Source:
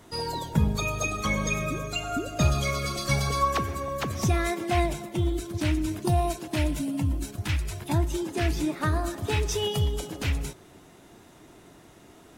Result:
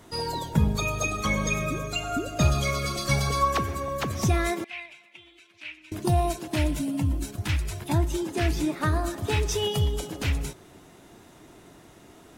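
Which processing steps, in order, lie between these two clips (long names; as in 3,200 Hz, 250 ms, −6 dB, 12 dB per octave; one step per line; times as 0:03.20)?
0:04.64–0:05.92: resonant band-pass 2,500 Hz, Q 4.4
level +1 dB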